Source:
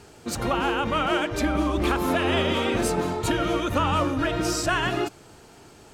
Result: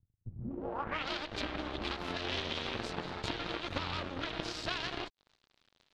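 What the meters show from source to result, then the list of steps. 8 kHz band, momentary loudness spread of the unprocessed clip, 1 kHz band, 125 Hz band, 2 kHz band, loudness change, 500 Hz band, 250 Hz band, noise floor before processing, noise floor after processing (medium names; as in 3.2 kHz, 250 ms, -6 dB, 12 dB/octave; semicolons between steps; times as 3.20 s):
-19.5 dB, 4 LU, -14.5 dB, -14.5 dB, -11.5 dB, -13.0 dB, -15.5 dB, -16.5 dB, -50 dBFS, -80 dBFS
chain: peaking EQ 88 Hz +4 dB 0.3 oct; compression 4:1, threshold -31 dBFS, peak gain reduction 11 dB; Chebyshev shaper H 3 -10 dB, 5 -35 dB, 8 -23 dB, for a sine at -20 dBFS; crossover distortion -56.5 dBFS; low-pass sweep 110 Hz -> 4 kHz, 0.34–1.07 s; trim +2.5 dB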